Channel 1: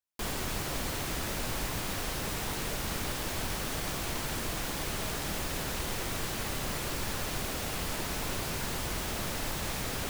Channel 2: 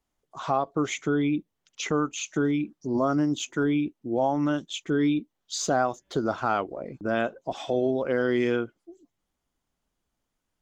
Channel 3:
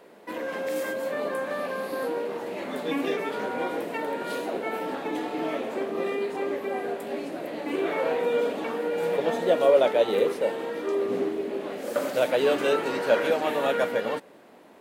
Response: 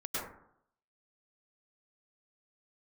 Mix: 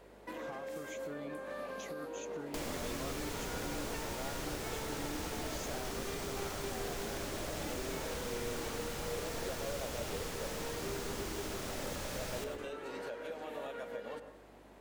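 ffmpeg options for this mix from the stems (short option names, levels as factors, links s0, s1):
-filter_complex "[0:a]acrossover=split=160|6200[s0][s1][s2];[s0]acompressor=threshold=0.00447:ratio=4[s3];[s1]acompressor=threshold=0.00501:ratio=4[s4];[s2]acompressor=threshold=0.00224:ratio=4[s5];[s3][s4][s5]amix=inputs=3:normalize=0,adelay=2350,volume=0.841,asplit=2[s6][s7];[s7]volume=0.501[s8];[1:a]volume=0.141[s9];[2:a]acompressor=threshold=0.0224:ratio=5,volume=0.447,asplit=2[s10][s11];[s11]volume=0.2[s12];[s9][s10]amix=inputs=2:normalize=0,aeval=exprs='val(0)+0.000708*(sin(2*PI*50*n/s)+sin(2*PI*2*50*n/s)/2+sin(2*PI*3*50*n/s)/3+sin(2*PI*4*50*n/s)/4+sin(2*PI*5*50*n/s)/5)':c=same,alimiter=level_in=3.55:limit=0.0631:level=0:latency=1:release=301,volume=0.282,volume=1[s13];[3:a]atrim=start_sample=2205[s14];[s8][s12]amix=inputs=2:normalize=0[s15];[s15][s14]afir=irnorm=-1:irlink=0[s16];[s6][s13][s16]amix=inputs=3:normalize=0,equalizer=f=6600:w=1.5:g=3.5"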